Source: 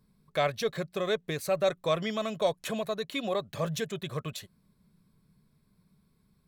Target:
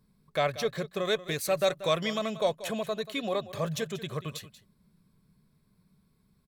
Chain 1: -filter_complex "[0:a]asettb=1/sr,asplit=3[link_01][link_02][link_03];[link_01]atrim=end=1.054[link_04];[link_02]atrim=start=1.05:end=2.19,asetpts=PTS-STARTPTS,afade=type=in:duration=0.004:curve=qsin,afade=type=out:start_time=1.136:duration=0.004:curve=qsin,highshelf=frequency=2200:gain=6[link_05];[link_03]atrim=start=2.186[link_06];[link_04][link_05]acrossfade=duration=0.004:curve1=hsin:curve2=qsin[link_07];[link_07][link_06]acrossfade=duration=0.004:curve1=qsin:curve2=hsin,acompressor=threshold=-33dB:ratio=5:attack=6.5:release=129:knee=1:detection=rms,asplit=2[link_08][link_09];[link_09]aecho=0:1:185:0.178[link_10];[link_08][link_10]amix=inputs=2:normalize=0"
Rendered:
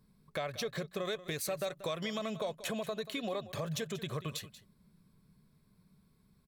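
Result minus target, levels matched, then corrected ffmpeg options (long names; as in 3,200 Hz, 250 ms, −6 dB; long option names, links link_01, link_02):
downward compressor: peak gain reduction +12.5 dB
-filter_complex "[0:a]asettb=1/sr,asplit=3[link_01][link_02][link_03];[link_01]atrim=end=1.054[link_04];[link_02]atrim=start=1.05:end=2.19,asetpts=PTS-STARTPTS,afade=type=in:duration=0.004:curve=qsin,afade=type=out:start_time=1.136:duration=0.004:curve=qsin,highshelf=frequency=2200:gain=6[link_05];[link_03]atrim=start=2.186[link_06];[link_04][link_05]acrossfade=duration=0.004:curve1=hsin:curve2=qsin[link_07];[link_07][link_06]acrossfade=duration=0.004:curve1=qsin:curve2=hsin,asplit=2[link_08][link_09];[link_09]aecho=0:1:185:0.178[link_10];[link_08][link_10]amix=inputs=2:normalize=0"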